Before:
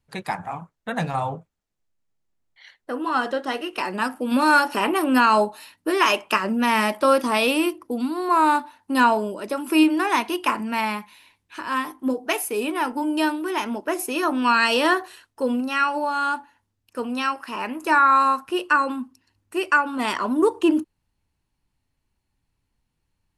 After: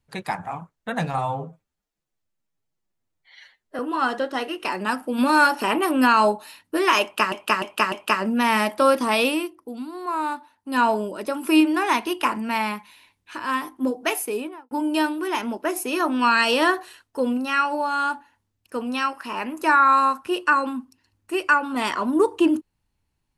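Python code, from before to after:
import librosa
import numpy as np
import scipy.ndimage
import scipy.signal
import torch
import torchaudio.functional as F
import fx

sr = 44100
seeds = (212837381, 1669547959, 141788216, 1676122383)

y = fx.studio_fade_out(x, sr, start_s=12.45, length_s=0.49)
y = fx.edit(y, sr, fx.stretch_span(start_s=1.18, length_s=1.74, factor=1.5),
    fx.repeat(start_s=6.15, length_s=0.3, count=4),
    fx.fade_down_up(start_s=7.48, length_s=1.66, db=-8.0, fade_s=0.23), tone=tone)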